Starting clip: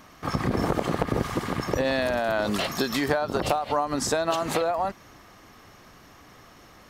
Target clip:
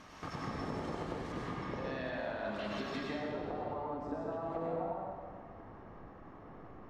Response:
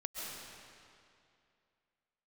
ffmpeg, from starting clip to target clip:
-filter_complex "[0:a]asetnsamples=nb_out_samples=441:pad=0,asendcmd='1.32 lowpass f 3300;3.03 lowpass f 1000',lowpass=7100,acompressor=threshold=-38dB:ratio=5[link_01];[1:a]atrim=start_sample=2205,asetrate=61740,aresample=44100[link_02];[link_01][link_02]afir=irnorm=-1:irlink=0,volume=3dB"

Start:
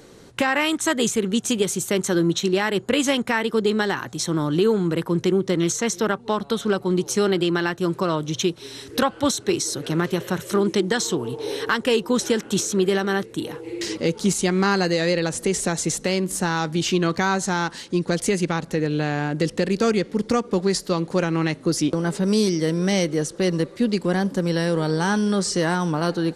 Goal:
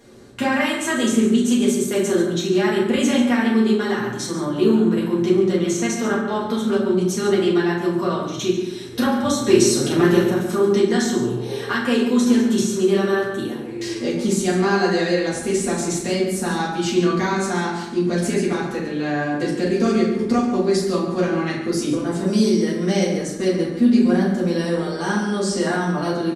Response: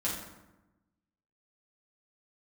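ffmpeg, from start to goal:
-filter_complex "[0:a]asettb=1/sr,asplit=3[link_01][link_02][link_03];[link_01]atrim=end=9.394[link_04];[link_02]atrim=start=9.39:end=10.23,asetpts=PTS-STARTPTS,afade=type=in:duration=0.004:curve=qsin,afade=type=out:start_time=0.836:duration=0.004:curve=qsin,acontrast=82[link_05];[link_03]atrim=start=10.226[link_06];[link_04][link_05]acrossfade=duration=0.004:curve1=hsin:curve2=qsin[link_07];[link_07][link_06]acrossfade=duration=0.004:curve1=qsin:curve2=hsin,asplit=2[link_08][link_09];[link_09]adelay=139.9,volume=-10dB,highshelf=frequency=4000:gain=-3.15[link_10];[link_08][link_10]amix=inputs=2:normalize=0[link_11];[1:a]atrim=start_sample=2205,asetrate=52920,aresample=44100[link_12];[link_11][link_12]afir=irnorm=-1:irlink=0,volume=-4.5dB"

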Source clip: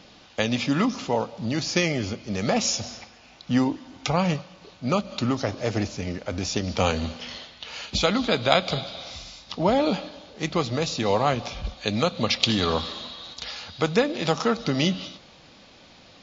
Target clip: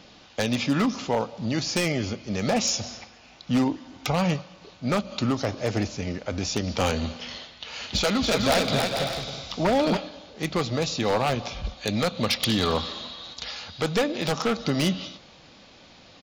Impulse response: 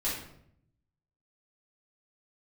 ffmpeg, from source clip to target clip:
-filter_complex "[0:a]aeval=exprs='0.178*(abs(mod(val(0)/0.178+3,4)-2)-1)':channel_layout=same,asplit=3[link_01][link_02][link_03];[link_01]afade=type=out:start_time=7.8:duration=0.02[link_04];[link_02]aecho=1:1:280|448|548.8|609.3|645.6:0.631|0.398|0.251|0.158|0.1,afade=type=in:start_time=7.8:duration=0.02,afade=type=out:start_time=9.96:duration=0.02[link_05];[link_03]afade=type=in:start_time=9.96:duration=0.02[link_06];[link_04][link_05][link_06]amix=inputs=3:normalize=0"

